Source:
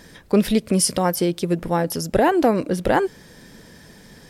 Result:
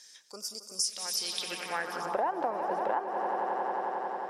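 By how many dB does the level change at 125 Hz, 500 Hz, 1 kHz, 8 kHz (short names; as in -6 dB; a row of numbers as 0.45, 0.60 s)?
-30.0, -13.5, -5.5, -8.0 dB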